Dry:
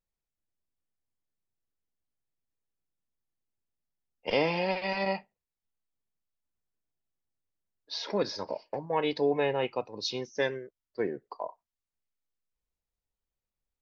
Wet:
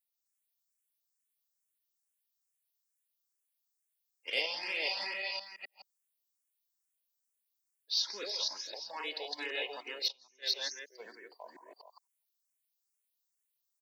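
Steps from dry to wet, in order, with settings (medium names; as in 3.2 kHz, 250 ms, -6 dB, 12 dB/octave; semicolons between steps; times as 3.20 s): chunks repeated in reverse 257 ms, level 0 dB; high-pass 240 Hz 24 dB/octave; differentiator; delay 166 ms -9.5 dB; 10.08–10.56 s: gate -39 dBFS, range -24 dB; in parallel at -8 dB: hard clipper -33.5 dBFS, distortion -16 dB; on the sum: dynamic bell 970 Hz, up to -3 dB, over -56 dBFS, Q 1.2; barber-pole phaser +2.3 Hz; trim +6 dB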